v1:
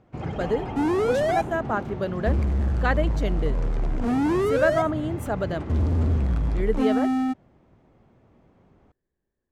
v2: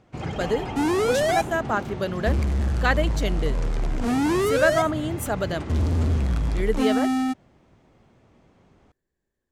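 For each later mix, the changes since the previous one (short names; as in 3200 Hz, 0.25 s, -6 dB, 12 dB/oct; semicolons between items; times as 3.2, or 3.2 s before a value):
master: add high shelf 2500 Hz +12 dB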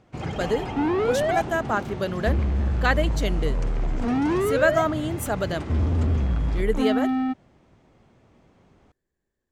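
second sound: add air absorption 390 m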